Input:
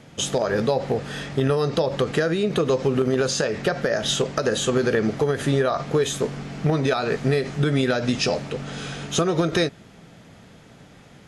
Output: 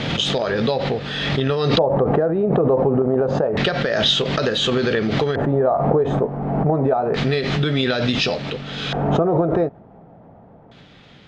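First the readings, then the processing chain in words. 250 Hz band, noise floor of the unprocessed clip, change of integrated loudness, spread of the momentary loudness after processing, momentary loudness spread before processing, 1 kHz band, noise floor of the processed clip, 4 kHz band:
+3.5 dB, -48 dBFS, +3.5 dB, 5 LU, 6 LU, +5.5 dB, -47 dBFS, +6.5 dB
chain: LFO low-pass square 0.28 Hz 790–3700 Hz; backwards sustainer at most 31 dB/s

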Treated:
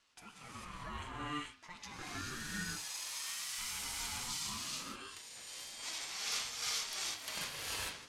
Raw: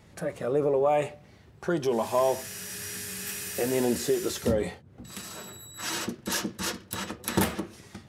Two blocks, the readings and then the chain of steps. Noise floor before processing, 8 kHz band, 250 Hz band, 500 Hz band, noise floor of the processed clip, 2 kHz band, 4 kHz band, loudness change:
-54 dBFS, -4.5 dB, -19.0 dB, -29.0 dB, -57 dBFS, -5.5 dB, -2.0 dB, -10.5 dB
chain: overdrive pedal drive 8 dB, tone 5500 Hz, clips at -11.5 dBFS; band-pass 5200 Hz, Q 0.63; non-linear reverb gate 0.47 s rising, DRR -5.5 dB; ring modulator with a swept carrier 640 Hz, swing 30%, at 0.38 Hz; gain -7.5 dB

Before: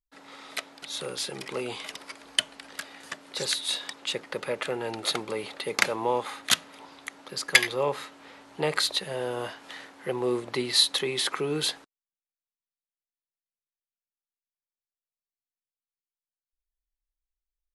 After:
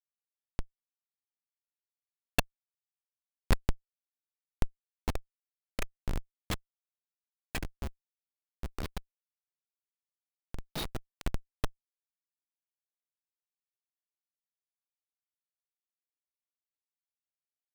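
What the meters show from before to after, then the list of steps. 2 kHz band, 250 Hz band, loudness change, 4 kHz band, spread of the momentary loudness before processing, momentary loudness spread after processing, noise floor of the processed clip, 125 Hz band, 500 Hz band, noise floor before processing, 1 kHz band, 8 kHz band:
-14.5 dB, -8.5 dB, -11.5 dB, -20.0 dB, 19 LU, 13 LU, under -85 dBFS, +1.5 dB, -16.5 dB, under -85 dBFS, -12.0 dB, -16.0 dB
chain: band inversion scrambler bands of 500 Hz; Schmitt trigger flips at -17 dBFS; vocal rider; gain +3 dB

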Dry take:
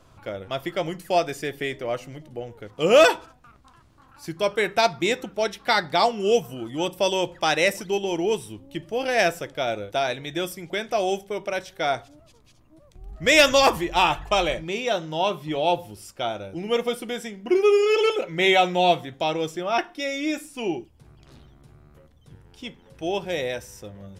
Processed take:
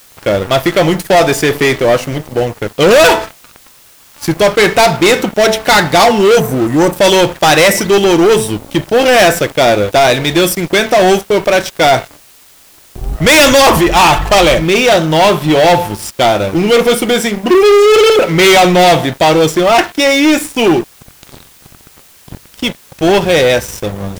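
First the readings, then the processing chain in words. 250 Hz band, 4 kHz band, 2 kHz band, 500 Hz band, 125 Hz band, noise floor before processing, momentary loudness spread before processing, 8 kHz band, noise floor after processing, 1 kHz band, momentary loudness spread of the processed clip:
+17.0 dB, +13.5 dB, +13.5 dB, +14.0 dB, +19.0 dB, -55 dBFS, 15 LU, +17.5 dB, -43 dBFS, +13.5 dB, 9 LU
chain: de-hum 219.4 Hz, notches 10; spectral delete 6.4–6.96, 2000–5800 Hz; sample leveller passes 5; in parallel at -6.5 dB: requantised 6-bit, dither triangular

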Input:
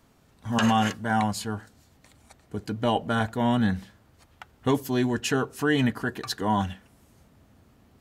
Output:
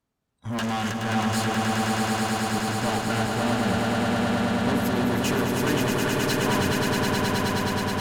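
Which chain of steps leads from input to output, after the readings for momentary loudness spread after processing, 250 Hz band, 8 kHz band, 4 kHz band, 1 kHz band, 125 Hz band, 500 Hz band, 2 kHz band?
3 LU, +2.5 dB, +7.5 dB, +5.5 dB, +2.5 dB, +3.5 dB, +4.0 dB, +5.0 dB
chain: spectral noise reduction 22 dB; tube stage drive 30 dB, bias 0.5; swelling echo 0.106 s, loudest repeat 8, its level -4.5 dB; gain +4.5 dB

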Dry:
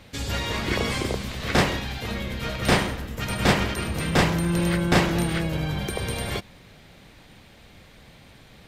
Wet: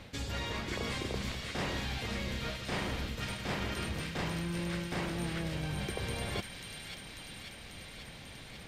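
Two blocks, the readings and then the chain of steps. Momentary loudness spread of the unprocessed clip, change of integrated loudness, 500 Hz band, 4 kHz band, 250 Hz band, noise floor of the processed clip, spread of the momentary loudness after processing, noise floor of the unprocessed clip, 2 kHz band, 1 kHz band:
9 LU, -12.5 dB, -12.5 dB, -9.5 dB, -12.5 dB, -49 dBFS, 11 LU, -50 dBFS, -11.0 dB, -12.5 dB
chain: high shelf 11000 Hz -8.5 dB; reverse; compressor 10:1, threshold -33 dBFS, peak gain reduction 19 dB; reverse; thin delay 0.542 s, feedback 73%, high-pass 2300 Hz, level -3.5 dB

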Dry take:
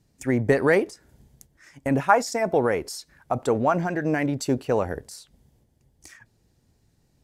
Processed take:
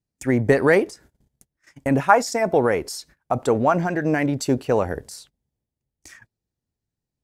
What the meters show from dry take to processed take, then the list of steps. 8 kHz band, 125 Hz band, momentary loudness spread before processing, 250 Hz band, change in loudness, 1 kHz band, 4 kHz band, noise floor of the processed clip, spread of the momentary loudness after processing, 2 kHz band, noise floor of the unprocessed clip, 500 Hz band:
+3.0 dB, +3.0 dB, 14 LU, +3.0 dB, +3.0 dB, +3.0 dB, +3.0 dB, under -85 dBFS, 14 LU, +3.0 dB, -66 dBFS, +3.0 dB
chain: gate -50 dBFS, range -23 dB; gain +3 dB

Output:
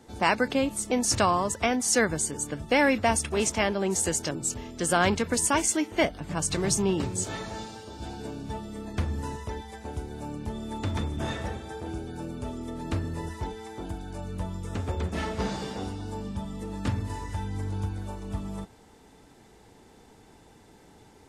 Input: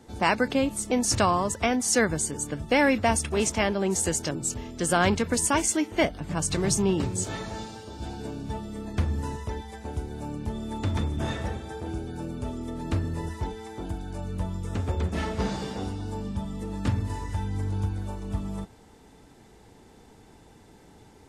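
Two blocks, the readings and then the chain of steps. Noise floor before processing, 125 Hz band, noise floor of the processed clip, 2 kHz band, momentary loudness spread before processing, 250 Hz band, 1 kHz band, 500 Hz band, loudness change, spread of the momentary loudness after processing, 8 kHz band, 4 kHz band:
-53 dBFS, -3.0 dB, -55 dBFS, 0.0 dB, 13 LU, -2.0 dB, -0.5 dB, -0.5 dB, -1.0 dB, 14 LU, 0.0 dB, 0.0 dB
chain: low shelf 250 Hz -3.5 dB

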